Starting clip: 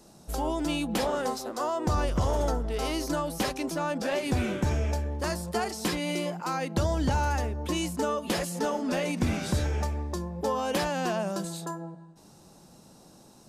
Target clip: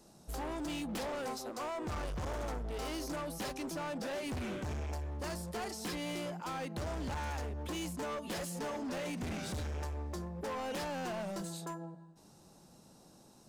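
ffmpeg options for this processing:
-af "asoftclip=type=hard:threshold=-30dB,volume=-6dB"

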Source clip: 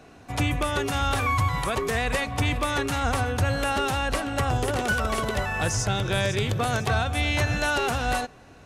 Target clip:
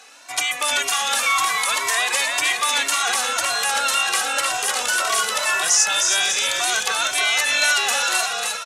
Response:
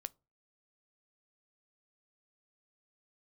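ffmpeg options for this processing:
-filter_complex "[0:a]highpass=940,equalizer=f=7.4k:w=0.48:g=11,asplit=6[a][b][c][d][e][f];[b]adelay=308,afreqshift=-41,volume=-4.5dB[g];[c]adelay=616,afreqshift=-82,volume=-11.8dB[h];[d]adelay=924,afreqshift=-123,volume=-19.2dB[i];[e]adelay=1232,afreqshift=-164,volume=-26.5dB[j];[f]adelay=1540,afreqshift=-205,volume=-33.8dB[k];[a][g][h][i][j][k]amix=inputs=6:normalize=0,asplit=2[l][m];[m]alimiter=limit=-20.5dB:level=0:latency=1:release=57,volume=-1dB[n];[l][n]amix=inputs=2:normalize=0,asplit=2[o][p];[p]adelay=2,afreqshift=1.9[q];[o][q]amix=inputs=2:normalize=1,volume=4dB"

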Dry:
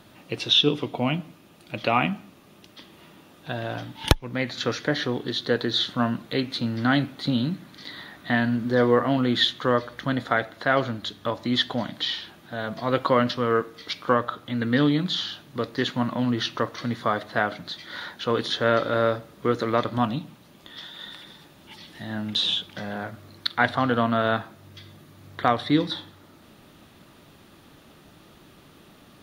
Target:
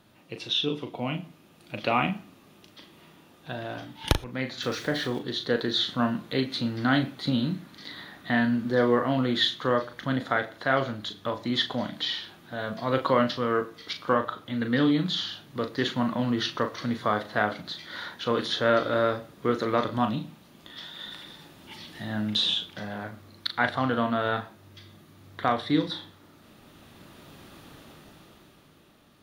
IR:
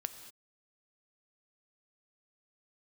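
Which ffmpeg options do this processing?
-filter_complex "[0:a]asettb=1/sr,asplit=3[a][b][c];[a]atrim=end=4.624[d];[b]atrim=start=4.62:end=5.19,asetpts=PTS-STARTPTS,afade=t=in:d=0.004:c=qsin,afade=t=out:st=0.566:d=0.004:c=qsin,aeval=exprs='val(0)+0.5*0.0141*sgn(val(0))':c=same[e];[c]atrim=start=5.186[f];[d][e]acrossfade=d=0.004:c1=hsin:c2=qsin[g];[g][f]acrossfade=d=0.004:c1=qsin:c2=hsin,dynaudnorm=f=120:g=21:m=12.5dB,asplit=2[h][i];[1:a]atrim=start_sample=2205,atrim=end_sample=3969,adelay=38[j];[i][j]afir=irnorm=-1:irlink=0,volume=-6.5dB[k];[h][k]amix=inputs=2:normalize=0,volume=-8.5dB"

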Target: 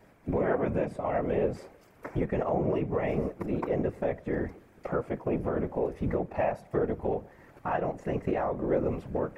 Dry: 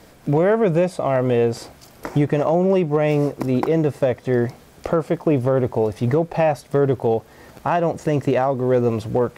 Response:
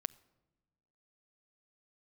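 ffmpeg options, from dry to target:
-filter_complex "[1:a]atrim=start_sample=2205,asetrate=66150,aresample=44100[a];[0:a][a]afir=irnorm=-1:irlink=0,afftfilt=real='hypot(re,im)*cos(2*PI*random(0))':imag='hypot(re,im)*sin(2*PI*random(1))':win_size=512:overlap=0.75,highshelf=f=2.9k:t=q:w=1.5:g=-8"

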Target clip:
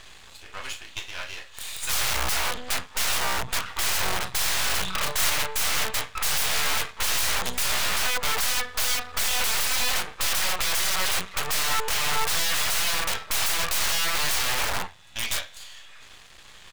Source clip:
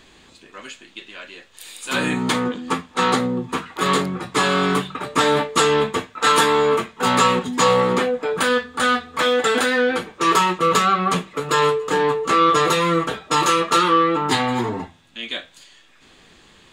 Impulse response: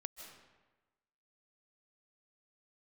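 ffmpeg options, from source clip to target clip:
-filter_complex "[0:a]acompressor=threshold=-18dB:ratio=16,asplit=2[a][b];[b]aecho=0:1:22|38:0.178|0.299[c];[a][c]amix=inputs=2:normalize=0,aeval=exprs='(mod(11.9*val(0)+1,2)-1)/11.9':c=same,asettb=1/sr,asplit=3[d][e][f];[d]atrim=end=4.844[g];[e]atrim=start=4.84:end=5.3,asetpts=PTS-STARTPTS,afade=t=in:d=0.004:c=qsin,afade=t=out:st=0.456:d=0.004:c=qsin,asplit=2[h][i];[i]adelay=32,volume=-3dB[j];[h][j]amix=inputs=2:normalize=0,atrim=end_sample=20286[k];[f]atrim=start=5.296[l];[g][k]acrossfade=d=0.004:c1=hsin:c2=qsin[m];[m][l]acrossfade=d=0.004:c1=qsin:c2=hsin,aeval=exprs='max(val(0),0)':c=same,equalizer=f=270:w=0.83:g=-13.5,volume=6.5dB"

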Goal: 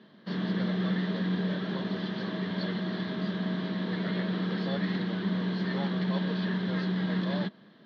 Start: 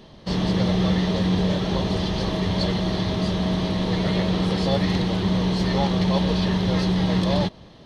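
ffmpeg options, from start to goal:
-af "highpass=f=170:w=0.5412,highpass=f=170:w=1.3066,equalizer=f=210:t=q:w=4:g=6,equalizer=f=530:t=q:w=4:g=-4,equalizer=f=820:t=q:w=4:g=-7,equalizer=f=1.6k:t=q:w=4:g=10,equalizer=f=2.6k:t=q:w=4:g=-5,lowpass=f=4k:w=0.5412,lowpass=f=4k:w=1.3066,volume=-8.5dB"

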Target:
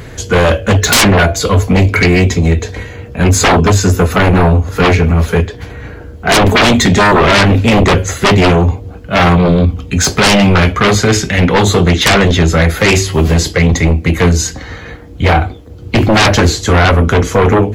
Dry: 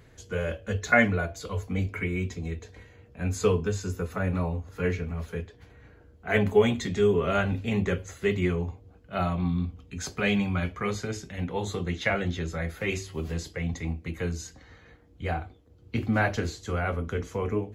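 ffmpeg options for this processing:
-filter_complex "[0:a]asettb=1/sr,asplit=3[a][b][c];[a]atrim=end=11.074[d];[b]atrim=start=11.07:end=11.63,asetpts=PTS-STARTPTS,afade=t=in:d=0.004:c=qsin,afade=t=out:st=0.556:d=0.004:c=qsin,equalizer=f=2.2k:t=o:w=2.2:g=5[e];[c]atrim=start=11.626[f];[d][e]acrossfade=d=0.004:c1=hsin:c2=qsin[g];[g][f]acrossfade=d=0.004:c1=qsin:c2=hsin,aeval=exprs='0.473*sin(PI/2*8.91*val(0)/0.473)':c=same,volume=2dB"

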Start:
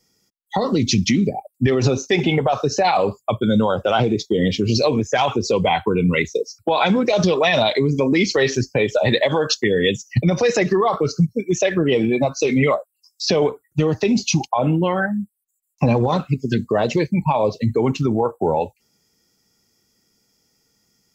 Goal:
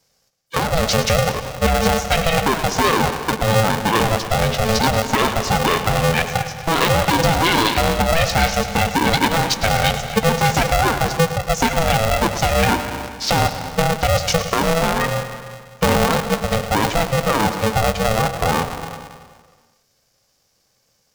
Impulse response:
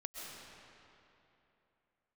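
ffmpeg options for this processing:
-filter_complex "[0:a]asplit=2[a][b];[1:a]atrim=start_sample=2205,asetrate=83790,aresample=44100,adelay=108[c];[b][c]afir=irnorm=-1:irlink=0,volume=-1dB[d];[a][d]amix=inputs=2:normalize=0,aeval=exprs='val(0)*sgn(sin(2*PI*330*n/s))':c=same"

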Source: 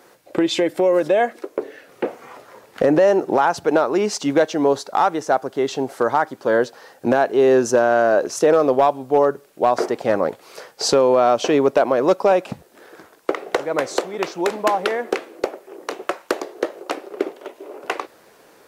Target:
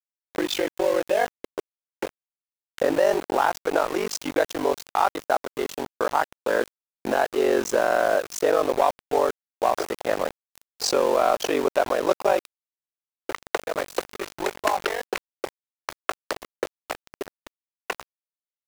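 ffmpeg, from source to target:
-af "aeval=exprs='val(0)*sin(2*PI*24*n/s)':c=same,highpass=f=500:p=1,aeval=exprs='val(0)*gte(abs(val(0)),0.0376)':c=same"

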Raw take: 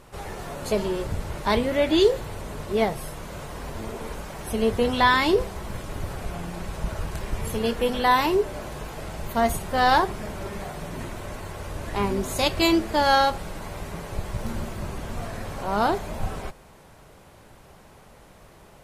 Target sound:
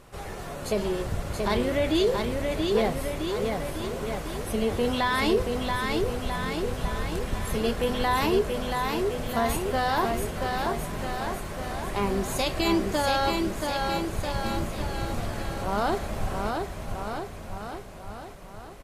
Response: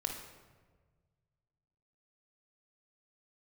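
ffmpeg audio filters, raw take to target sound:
-af "bandreject=f=900:w=16,alimiter=limit=-15dB:level=0:latency=1:release=20,aecho=1:1:680|1292|1843|2339|2785:0.631|0.398|0.251|0.158|0.1,volume=-1.5dB"

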